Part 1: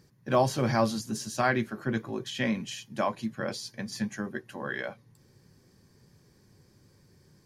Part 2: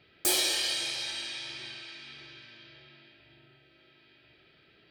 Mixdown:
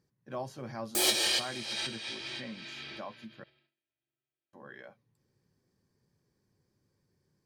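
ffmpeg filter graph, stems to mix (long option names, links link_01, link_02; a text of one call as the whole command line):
ffmpeg -i stem1.wav -i stem2.wav -filter_complex "[0:a]volume=-17dB,asplit=3[link_01][link_02][link_03];[link_01]atrim=end=3.44,asetpts=PTS-STARTPTS,afade=type=out:start_time=3.436:duration=0.004:curve=hsin[link_04];[link_02]atrim=start=3.44:end=4.53,asetpts=PTS-STARTPTS,volume=0[link_05];[link_03]atrim=start=4.53,asetpts=PTS-STARTPTS,afade=type=in:duration=0.004:curve=hsin[link_06];[link_04][link_05][link_06]concat=n=3:v=0:a=1,asplit=2[link_07][link_08];[1:a]agate=range=-41dB:threshold=-51dB:ratio=16:detection=peak,adelay=700,volume=3dB[link_09];[link_08]apad=whole_len=247222[link_10];[link_09][link_10]sidechaincompress=threshold=-52dB:ratio=8:attack=16:release=197[link_11];[link_07][link_11]amix=inputs=2:normalize=0,equalizer=frequency=530:width=0.34:gain=3" out.wav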